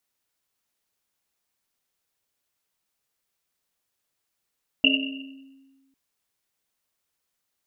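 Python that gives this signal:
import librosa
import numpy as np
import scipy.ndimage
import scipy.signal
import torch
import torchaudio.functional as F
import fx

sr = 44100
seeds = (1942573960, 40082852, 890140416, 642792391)

y = fx.risset_drum(sr, seeds[0], length_s=1.1, hz=270.0, decay_s=1.53, noise_hz=2800.0, noise_width_hz=210.0, noise_pct=55)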